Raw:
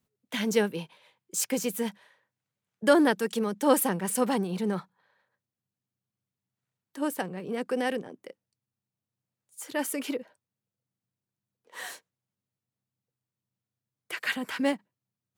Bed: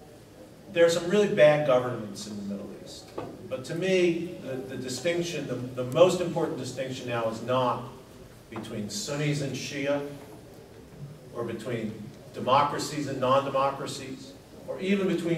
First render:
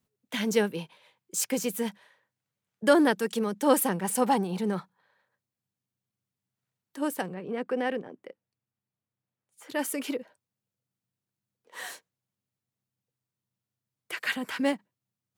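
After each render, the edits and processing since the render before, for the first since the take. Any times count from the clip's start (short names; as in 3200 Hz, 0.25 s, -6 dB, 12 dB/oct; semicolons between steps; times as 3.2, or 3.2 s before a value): 4.04–4.61 bell 840 Hz +10.5 dB 0.24 oct; 7.34–9.7 tone controls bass -2 dB, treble -14 dB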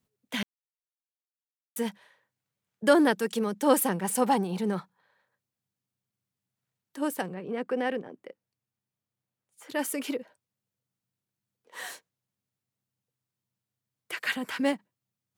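0.43–1.76 mute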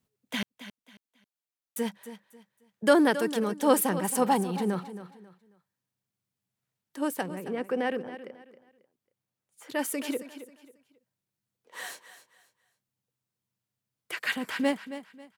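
feedback echo 0.271 s, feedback 29%, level -13 dB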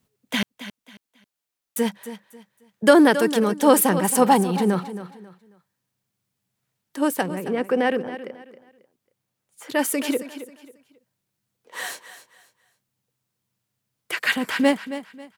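gain +8 dB; limiter -3 dBFS, peak gain reduction 3 dB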